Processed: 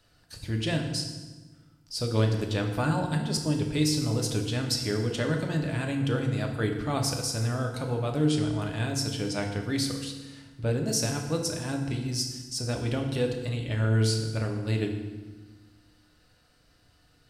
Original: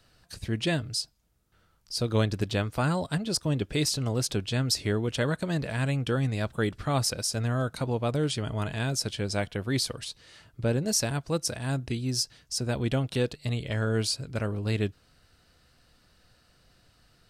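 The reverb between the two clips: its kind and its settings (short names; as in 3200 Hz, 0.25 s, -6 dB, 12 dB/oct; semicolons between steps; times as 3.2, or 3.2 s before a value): FDN reverb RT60 1.3 s, low-frequency decay 1.4×, high-frequency decay 0.8×, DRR 2 dB; gain -3 dB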